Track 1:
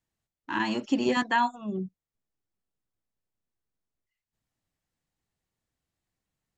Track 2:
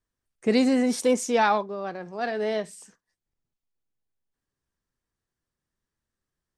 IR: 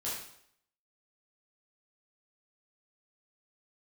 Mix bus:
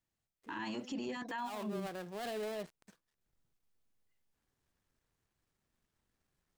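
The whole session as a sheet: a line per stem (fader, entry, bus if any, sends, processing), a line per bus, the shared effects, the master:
−3.5 dB, 0.00 s, no send, no processing
0:01.03 −23.5 dB → 0:01.53 −11 dB → 0:02.60 −11 dB → 0:03.34 −2 dB, 0.00 s, no send, gap after every zero crossing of 0.2 ms; compressor whose output falls as the input rises −29 dBFS, ratio −1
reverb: not used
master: brickwall limiter −32 dBFS, peak gain reduction 16 dB

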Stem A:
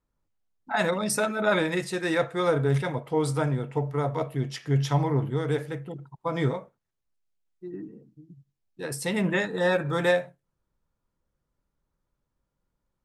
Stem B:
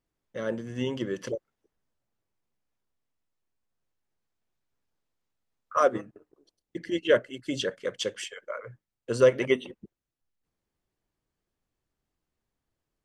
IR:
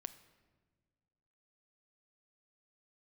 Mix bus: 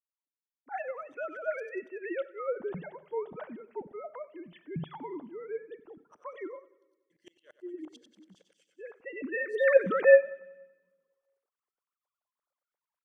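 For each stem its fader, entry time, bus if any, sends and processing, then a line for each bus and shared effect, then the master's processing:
0:09.05 −14 dB → 0:09.84 −1.5 dB, 0.00 s, send −7.5 dB, echo send −20 dB, three sine waves on the formant tracks; spectral tilt −4 dB per octave
−15.0 dB, 0.35 s, send −18 dB, echo send −18.5 dB, brickwall limiter −18 dBFS, peak gain reduction 9.5 dB; tremolo with a ramp in dB swelling 8.8 Hz, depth 38 dB; automatic ducking −15 dB, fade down 0.30 s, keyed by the first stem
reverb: on, pre-delay 7 ms
echo: repeating echo 94 ms, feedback 56%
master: spectral tilt +3.5 dB per octave

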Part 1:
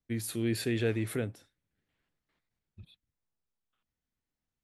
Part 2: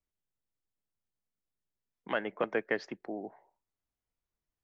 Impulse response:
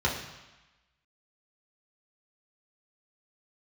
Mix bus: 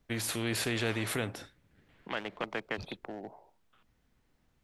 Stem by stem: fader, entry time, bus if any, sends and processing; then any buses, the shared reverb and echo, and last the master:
−0.5 dB, 0.00 s, no send, high-shelf EQ 4,200 Hz −11.5 dB
−10.0 dB, 0.00 s, no send, adaptive Wiener filter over 25 samples; low-pass that shuts in the quiet parts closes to 1,400 Hz, open at −31.5 dBFS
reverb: not used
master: every bin compressed towards the loudest bin 2 to 1

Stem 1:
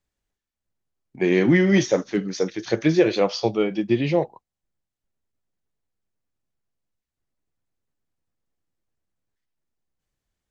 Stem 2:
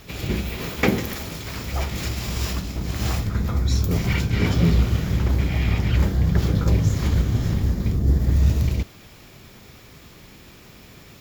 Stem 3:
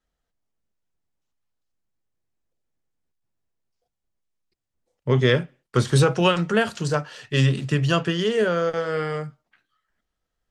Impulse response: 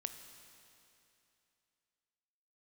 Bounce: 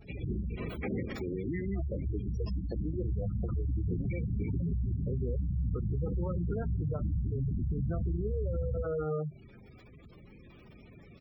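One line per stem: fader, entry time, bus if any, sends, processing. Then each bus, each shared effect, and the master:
−11.5 dB, 0.00 s, no send, echo send −22.5 dB, downward compressor 3 to 1, threshold −23 dBFS, peak gain reduction 9 dB
−6.0 dB, 0.00 s, no send, echo send −15 dB, brickwall limiter −14 dBFS, peak gain reduction 10 dB
−0.5 dB, 0.00 s, no send, no echo send, low-pass filter 1,200 Hz 12 dB per octave; downward compressor 12 to 1, threshold −26 dBFS, peak gain reduction 13.5 dB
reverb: not used
echo: repeating echo 220 ms, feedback 22%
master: gate on every frequency bin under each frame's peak −15 dB strong; brickwall limiter −25.5 dBFS, peak gain reduction 9.5 dB

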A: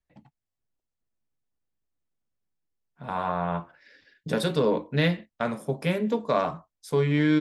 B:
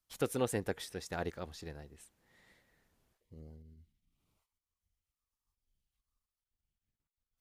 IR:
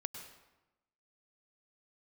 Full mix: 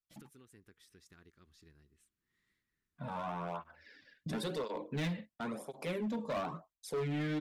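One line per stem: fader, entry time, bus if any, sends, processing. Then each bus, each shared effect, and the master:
−0.5 dB, 0.00 s, no send, noise gate with hold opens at −57 dBFS; through-zero flanger with one copy inverted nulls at 0.96 Hz, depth 3 ms
−14.0 dB, 0.00 s, no send, downward compressor 4 to 1, threshold −42 dBFS, peak gain reduction 13 dB; flat-topped bell 660 Hz −15 dB 1.1 octaves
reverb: not used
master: gain into a clipping stage and back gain 25 dB; brickwall limiter −32 dBFS, peak gain reduction 7 dB

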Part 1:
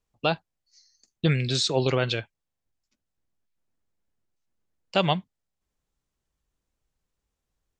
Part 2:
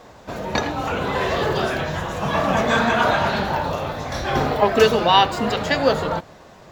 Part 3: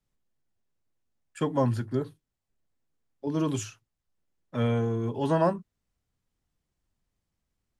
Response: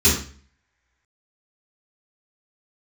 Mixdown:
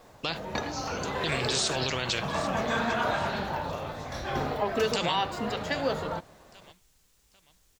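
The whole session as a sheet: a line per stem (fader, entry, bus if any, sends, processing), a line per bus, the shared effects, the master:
−5.0 dB, 0.00 s, no send, echo send −19.5 dB, high-shelf EQ 2,300 Hz +11 dB; every bin compressed towards the loudest bin 2 to 1
−9.5 dB, 0.00 s, no send, no echo send, no processing
muted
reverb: not used
echo: repeating echo 794 ms, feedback 34%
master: brickwall limiter −17 dBFS, peak gain reduction 8 dB

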